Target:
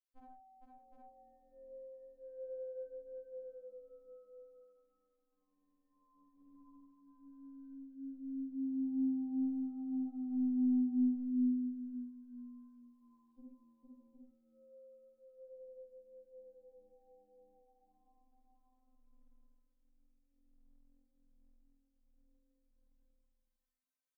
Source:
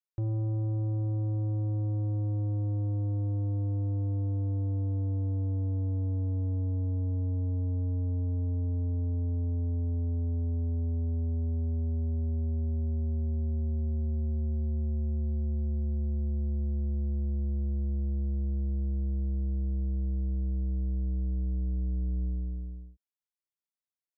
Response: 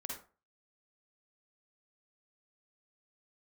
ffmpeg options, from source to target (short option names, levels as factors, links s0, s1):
-filter_complex "[0:a]asettb=1/sr,asplit=3[s0][s1][s2];[s0]atrim=end=11.144[s3];[s1]atrim=start=11.14:end=13.4,asetpts=PTS-STARTPTS,afade=t=in:d=0.004:c=qsin,afade=t=out:st=2.256:d=0.004:c=qsin,highpass=f=870:p=1[s4];[s2]atrim=start=13.396[s5];[s3][s4]acrossfade=d=0.004:c1=hsin:c2=qsin[s6];[s6][s5]acrossfade=d=0.004:c1=qsin:c2=hsin,acompressor=threshold=0.01:ratio=2,tremolo=f=0.76:d=0.38,aecho=1:1:54|72|83|458|542|765:0.112|0.237|0.266|0.668|0.188|0.631[s7];[1:a]atrim=start_sample=2205,afade=t=out:st=0.22:d=0.01,atrim=end_sample=10143[s8];[s7][s8]afir=irnorm=-1:irlink=0,afftfilt=real='re*3.46*eq(mod(b,12),0)':imag='im*3.46*eq(mod(b,12),0)':win_size=2048:overlap=0.75"